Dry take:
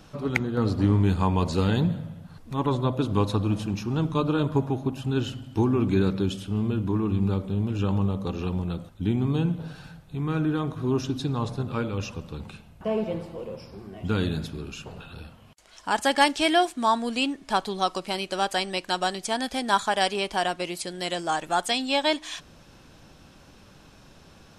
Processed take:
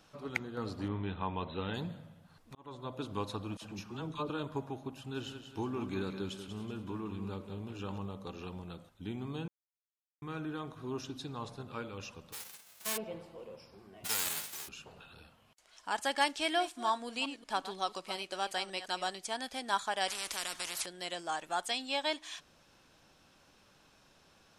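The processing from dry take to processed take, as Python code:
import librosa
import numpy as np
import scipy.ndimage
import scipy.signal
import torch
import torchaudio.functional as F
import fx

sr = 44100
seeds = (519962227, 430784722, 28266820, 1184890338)

y = fx.brickwall_lowpass(x, sr, high_hz=4100.0, at=(0.88, 1.74))
y = fx.dispersion(y, sr, late='lows', ms=54.0, hz=860.0, at=(3.57, 4.3))
y = fx.echo_thinned(y, sr, ms=188, feedback_pct=42, hz=210.0, wet_db=-8.5, at=(4.92, 7.98))
y = fx.envelope_flatten(y, sr, power=0.1, at=(12.32, 12.96), fade=0.02)
y = fx.envelope_flatten(y, sr, power=0.1, at=(14.04, 14.67), fade=0.02)
y = fx.reverse_delay(y, sr, ms=180, wet_db=-12.5, at=(16.36, 19.12))
y = fx.spectral_comp(y, sr, ratio=4.0, at=(20.08, 20.86))
y = fx.edit(y, sr, fx.fade_in_span(start_s=2.55, length_s=0.47),
    fx.silence(start_s=9.48, length_s=0.74), tone=tone)
y = fx.low_shelf(y, sr, hz=330.0, db=-10.5)
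y = y * librosa.db_to_amplitude(-8.5)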